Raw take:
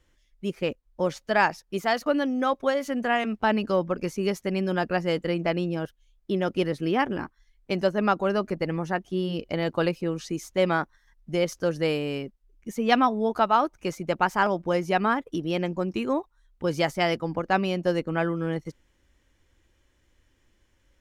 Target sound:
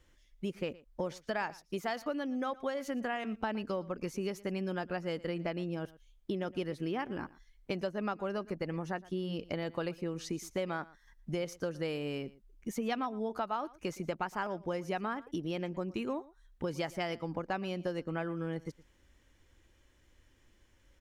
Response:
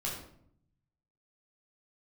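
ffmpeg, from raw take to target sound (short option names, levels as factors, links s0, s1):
-filter_complex "[0:a]acompressor=threshold=0.02:ratio=4,asplit=2[s0][s1];[s1]aecho=0:1:116:0.0944[s2];[s0][s2]amix=inputs=2:normalize=0"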